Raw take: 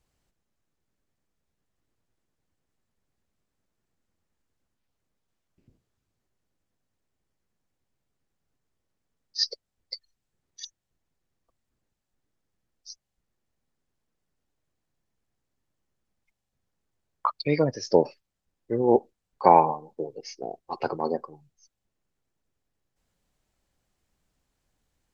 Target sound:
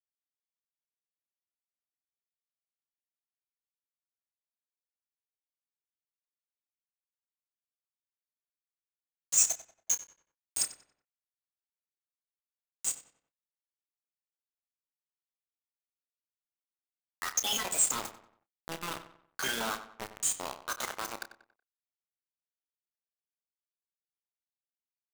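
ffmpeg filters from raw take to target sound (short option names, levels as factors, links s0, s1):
-filter_complex "[0:a]highpass=81,bandreject=f=60:t=h:w=6,bandreject=f=120:t=h:w=6,bandreject=f=180:t=h:w=6,bandreject=f=240:t=h:w=6,afftfilt=real='re*lt(hypot(re,im),0.251)':imag='im*lt(hypot(re,im),0.251)':win_size=1024:overlap=0.75,alimiter=limit=0.106:level=0:latency=1:release=414,asetrate=62367,aresample=44100,atempo=0.707107,asoftclip=type=tanh:threshold=0.0376,crystalizer=i=6:c=0,acrusher=bits=4:mix=0:aa=0.000001,asplit=2[s0][s1];[s1]adelay=30,volume=0.266[s2];[s0][s2]amix=inputs=2:normalize=0,asplit=2[s3][s4];[s4]adelay=93,lowpass=f=3300:p=1,volume=0.251,asplit=2[s5][s6];[s6]adelay=93,lowpass=f=3300:p=1,volume=0.4,asplit=2[s7][s8];[s8]adelay=93,lowpass=f=3300:p=1,volume=0.4,asplit=2[s9][s10];[s10]adelay=93,lowpass=f=3300:p=1,volume=0.4[s11];[s3][s5][s7][s9][s11]amix=inputs=5:normalize=0,volume=0.631"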